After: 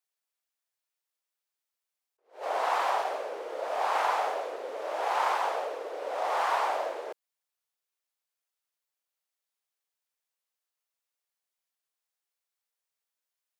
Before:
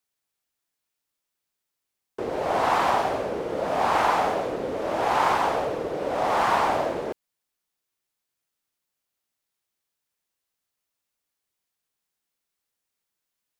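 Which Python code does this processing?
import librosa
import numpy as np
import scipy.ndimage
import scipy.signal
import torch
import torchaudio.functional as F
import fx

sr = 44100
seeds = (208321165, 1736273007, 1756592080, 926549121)

y = scipy.signal.sosfilt(scipy.signal.butter(4, 460.0, 'highpass', fs=sr, output='sos'), x)
y = fx.attack_slew(y, sr, db_per_s=200.0)
y = y * 10.0 ** (-5.5 / 20.0)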